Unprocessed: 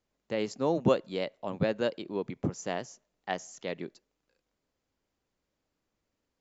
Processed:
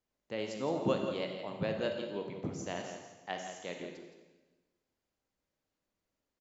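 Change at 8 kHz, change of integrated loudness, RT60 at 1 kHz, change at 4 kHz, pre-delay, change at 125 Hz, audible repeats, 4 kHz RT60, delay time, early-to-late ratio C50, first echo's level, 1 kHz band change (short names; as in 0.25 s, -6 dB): n/a, -5.0 dB, 1.1 s, -2.0 dB, 32 ms, -5.5 dB, 1, 1.1 s, 0.168 s, 4.0 dB, -9.5 dB, -4.5 dB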